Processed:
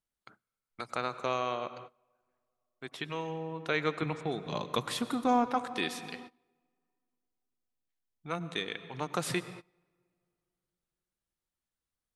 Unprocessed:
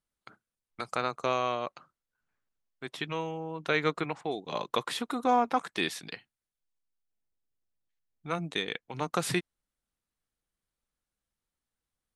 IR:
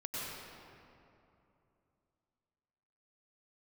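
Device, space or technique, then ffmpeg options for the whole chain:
keyed gated reverb: -filter_complex "[0:a]asettb=1/sr,asplit=3[a][b][c];[a]atrim=end=4.024[d];[b]atrim=start=4.02:end=5.46,asetpts=PTS-STARTPTS,afade=t=in:d=0.004:c=qsin,afade=t=out:st=1.436:d=0.004:c=qsin,bass=f=250:g=10,treble=f=4k:g=4[e];[c]atrim=start=5.456[f];[d][e]acrossfade=d=0.004:c1=hsin:c2=qsin[g];[g][f]acrossfade=d=0.004:c1=qsin:c2=hsin,asplit=3[h][i][j];[1:a]atrim=start_sample=2205[k];[i][k]afir=irnorm=-1:irlink=0[l];[j]apad=whole_len=535851[m];[l][m]sidechaingate=range=-23dB:threshold=-54dB:ratio=16:detection=peak,volume=-13dB[n];[h][n]amix=inputs=2:normalize=0,volume=-4dB"

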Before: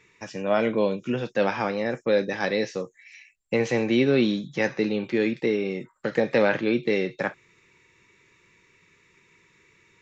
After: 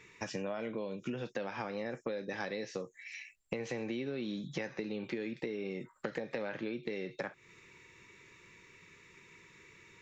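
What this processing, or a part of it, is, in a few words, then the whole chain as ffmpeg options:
serial compression, leveller first: -af "acompressor=threshold=-26dB:ratio=2.5,acompressor=threshold=-37dB:ratio=6,volume=1.5dB"

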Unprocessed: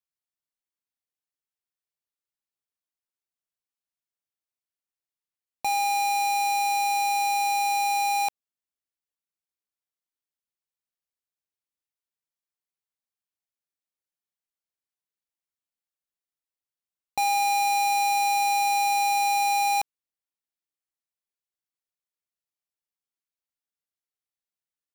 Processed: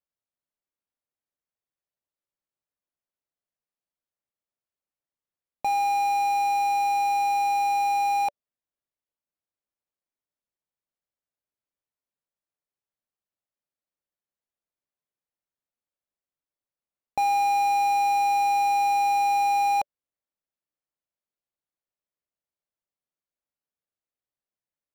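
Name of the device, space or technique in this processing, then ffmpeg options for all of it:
through cloth: -af "equalizer=f=580:w=6.5:g=5.5,highshelf=f=2.4k:g=-14.5,volume=3dB"

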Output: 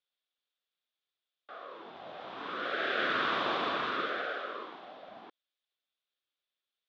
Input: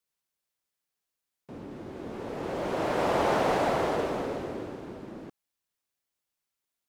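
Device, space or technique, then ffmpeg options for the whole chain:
voice changer toy: -filter_complex "[0:a]aeval=exprs='val(0)*sin(2*PI*690*n/s+690*0.45/0.7*sin(2*PI*0.7*n/s))':c=same,highpass=430,equalizer=f=900:t=q:w=4:g=-10,equalizer=f=2k:t=q:w=4:g=-3,equalizer=f=3.5k:t=q:w=4:g=10,lowpass=f=4.2k:w=0.5412,lowpass=f=4.2k:w=1.3066,asettb=1/sr,asplit=3[a][b][c];[a]atrim=end=4.324[d];[b]atrim=start=4.32:end=5.09,asetpts=PTS-STARTPTS,afade=t=in:d=0.004:c=qsin,afade=t=out:st=0.766:d=0.004:c=qsin,highpass=190[e];[c]atrim=start=5.086[f];[d][e]acrossfade=d=0.004:c1=hsin:c2=qsin[g];[g][f]acrossfade=d=0.004:c1=qsin:c2=hsin,volume=1.5dB"

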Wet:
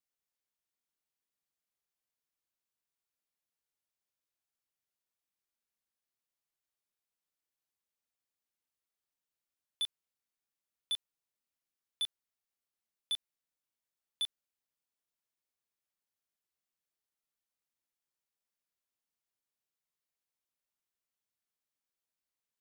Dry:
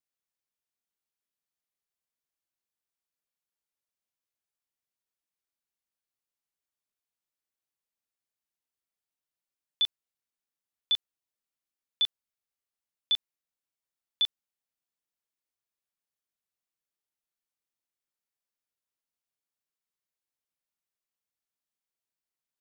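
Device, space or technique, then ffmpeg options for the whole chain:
clipper into limiter: -af "asoftclip=type=hard:threshold=-25dB,alimiter=level_in=5dB:limit=-24dB:level=0:latency=1,volume=-5dB,volume=-1.5dB"

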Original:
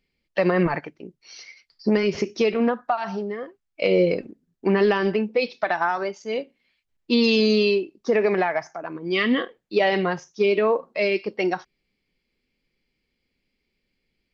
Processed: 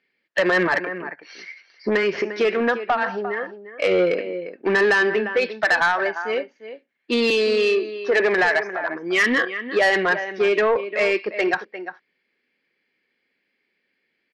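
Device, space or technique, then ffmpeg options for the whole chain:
intercom: -filter_complex "[0:a]asettb=1/sr,asplit=3[a][b][c];[a]atrim=end=7.304[d];[b]atrim=start=7.3:end=8.2,asetpts=PTS-STARTPTS,afade=t=in:d=0.004:c=qsin,afade=t=out:st=0.896:d=0.004:c=qsin,highpass=f=250:w=0.5412,highpass=f=250:w=1.3066[e];[c]atrim=start=8.196[f];[d][e]acrossfade=d=0.004:c1=hsin:c2=qsin[g];[g][f]acrossfade=d=0.004:c1=qsin:c2=hsin,highpass=320,lowpass=3.5k,equalizer=f=1.7k:t=o:w=0.46:g=11.5,asplit=2[h][i];[i]adelay=349.9,volume=-13dB,highshelf=f=4k:g=-7.87[j];[h][j]amix=inputs=2:normalize=0,asoftclip=type=tanh:threshold=-16dB,volume=4dB"

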